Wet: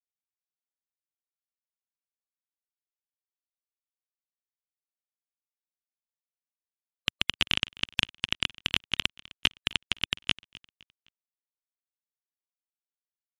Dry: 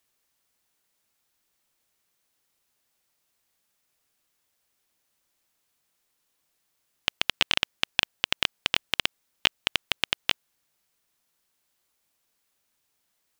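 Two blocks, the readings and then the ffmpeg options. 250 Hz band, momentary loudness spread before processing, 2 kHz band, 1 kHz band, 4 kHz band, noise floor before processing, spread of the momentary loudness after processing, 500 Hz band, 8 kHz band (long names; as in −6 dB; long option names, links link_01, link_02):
+1.5 dB, 6 LU, −2.5 dB, −6.0 dB, −1.5 dB, −76 dBFS, 6 LU, −6.5 dB, −3.0 dB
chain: -filter_complex "[0:a]highpass=frequency=140:poles=1,asplit=2[link_01][link_02];[link_02]highpass=frequency=720:poles=1,volume=11dB,asoftclip=type=tanh:threshold=-1.5dB[link_03];[link_01][link_03]amix=inputs=2:normalize=0,lowpass=frequency=5400:poles=1,volume=-6dB,asubboost=boost=11:cutoff=180,afftfilt=real='re*gte(hypot(re,im),0.00891)':imag='im*gte(hypot(re,im),0.00891)':win_size=1024:overlap=0.75,aecho=1:1:257|514|771:0.0794|0.0294|0.0109,volume=-3dB"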